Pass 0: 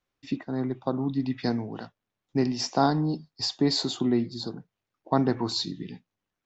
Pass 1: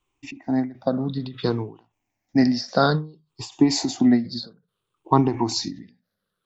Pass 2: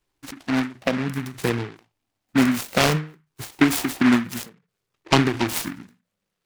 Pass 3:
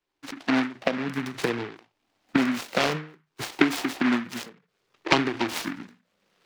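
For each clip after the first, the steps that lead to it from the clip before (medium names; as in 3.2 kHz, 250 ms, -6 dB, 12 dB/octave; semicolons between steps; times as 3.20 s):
drifting ripple filter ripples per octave 0.67, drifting -0.59 Hz, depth 14 dB; endings held to a fixed fall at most 160 dB/s; trim +4 dB
delay time shaken by noise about 1.5 kHz, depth 0.19 ms
recorder AGC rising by 20 dB/s; three-band isolator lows -12 dB, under 210 Hz, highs -12 dB, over 5.9 kHz; trim -4.5 dB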